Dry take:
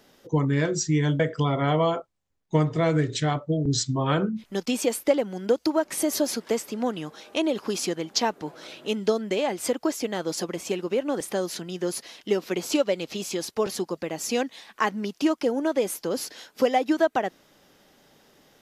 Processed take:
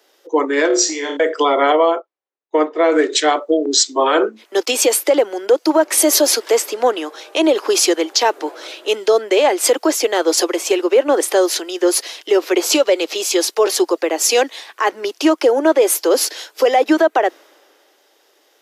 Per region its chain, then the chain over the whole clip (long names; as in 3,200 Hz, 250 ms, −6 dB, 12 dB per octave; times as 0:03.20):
0:00.67–0:01.17: low-pass filter 6,400 Hz + downward compressor 5 to 1, threshold −25 dBFS + flutter between parallel walls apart 4.8 metres, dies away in 0.39 s
0:01.72–0:02.92: high-frequency loss of the air 120 metres + expander for the loud parts, over −40 dBFS
whole clip: Butterworth high-pass 320 Hz 48 dB per octave; boost into a limiter +18.5 dB; multiband upward and downward expander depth 40%; level −4 dB